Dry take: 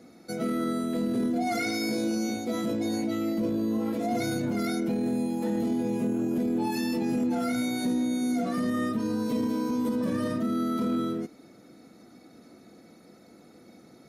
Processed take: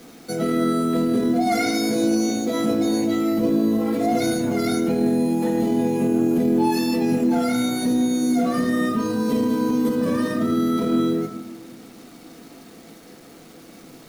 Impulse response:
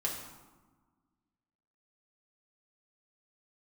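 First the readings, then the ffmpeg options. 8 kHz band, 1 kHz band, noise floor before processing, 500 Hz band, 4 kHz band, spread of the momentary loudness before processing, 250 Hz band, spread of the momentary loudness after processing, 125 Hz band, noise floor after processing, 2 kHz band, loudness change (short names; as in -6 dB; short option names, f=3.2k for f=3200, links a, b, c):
+8.0 dB, +8.0 dB, -54 dBFS, +8.5 dB, +7.0 dB, 2 LU, +7.0 dB, 3 LU, +6.5 dB, -45 dBFS, +6.0 dB, +7.5 dB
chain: -filter_complex "[0:a]acontrast=77,acrusher=bits=7:mix=0:aa=0.000001,asplit=2[a][b];[1:a]atrim=start_sample=2205[c];[b][c]afir=irnorm=-1:irlink=0,volume=-3.5dB[d];[a][d]amix=inputs=2:normalize=0,volume=-4.5dB"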